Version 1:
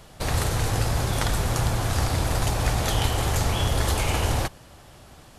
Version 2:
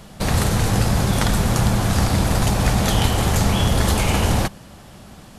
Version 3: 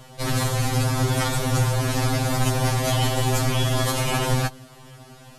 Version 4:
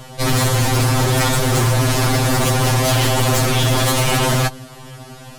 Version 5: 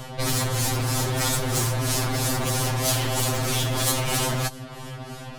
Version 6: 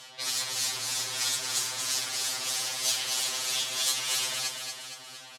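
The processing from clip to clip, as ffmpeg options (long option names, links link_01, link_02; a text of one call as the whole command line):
ffmpeg -i in.wav -af "equalizer=frequency=200:width=2.7:gain=11,volume=4.5dB" out.wav
ffmpeg -i in.wav -af "afftfilt=real='re*2.45*eq(mod(b,6),0)':imag='im*2.45*eq(mod(b,6),0)':win_size=2048:overlap=0.75" out.wav
ffmpeg -i in.wav -af "aeval=exprs='0.112*(abs(mod(val(0)/0.112+3,4)-2)-1)':channel_layout=same,volume=8.5dB" out.wav
ffmpeg -i in.wav -filter_complex "[0:a]acrossover=split=4300[link_01][link_02];[link_01]acompressor=threshold=-24dB:ratio=6[link_03];[link_02]tremolo=f=3.1:d=0.83[link_04];[link_03][link_04]amix=inputs=2:normalize=0" out.wav
ffmpeg -i in.wav -filter_complex "[0:a]bandpass=frequency=4700:width_type=q:width=0.88:csg=0,asplit=2[link_01][link_02];[link_02]aecho=0:1:233|466|699|932|1165|1398|1631:0.531|0.276|0.144|0.0746|0.0388|0.0202|0.0105[link_03];[link_01][link_03]amix=inputs=2:normalize=0" out.wav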